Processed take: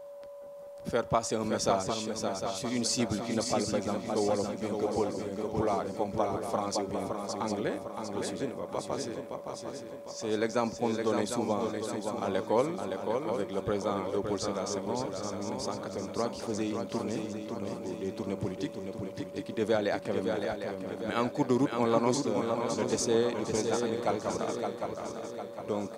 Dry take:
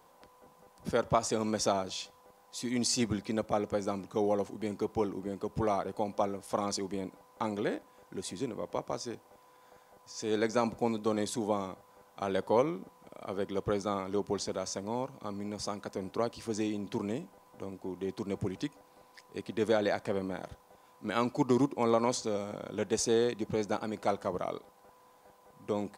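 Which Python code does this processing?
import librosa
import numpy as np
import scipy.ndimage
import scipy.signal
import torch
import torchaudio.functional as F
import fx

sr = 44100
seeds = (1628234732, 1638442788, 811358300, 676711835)

y = fx.echo_swing(x, sr, ms=753, ratio=3, feedback_pct=48, wet_db=-5.5)
y = y + 10.0 ** (-43.0 / 20.0) * np.sin(2.0 * np.pi * 570.0 * np.arange(len(y)) / sr)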